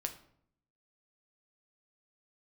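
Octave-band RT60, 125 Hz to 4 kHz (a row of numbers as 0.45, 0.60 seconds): 0.95, 0.90, 0.70, 0.60, 0.50, 0.40 seconds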